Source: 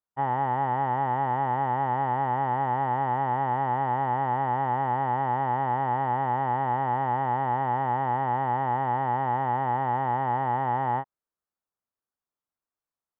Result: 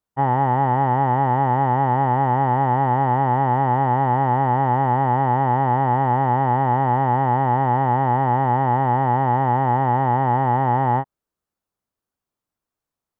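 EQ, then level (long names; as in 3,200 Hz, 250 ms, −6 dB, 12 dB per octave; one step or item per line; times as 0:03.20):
low-shelf EQ 480 Hz +8.5 dB
+4.5 dB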